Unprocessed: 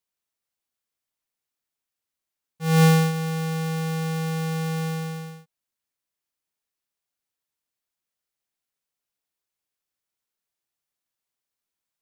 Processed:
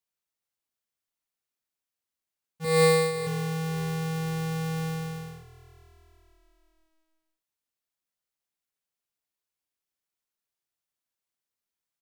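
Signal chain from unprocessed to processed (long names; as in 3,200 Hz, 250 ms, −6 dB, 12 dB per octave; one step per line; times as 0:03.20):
0:02.64–0:03.27: EQ curve with evenly spaced ripples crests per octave 0.96, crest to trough 16 dB
echo with shifted repeats 492 ms, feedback 50%, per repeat −41 Hz, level −20 dB
level −3.5 dB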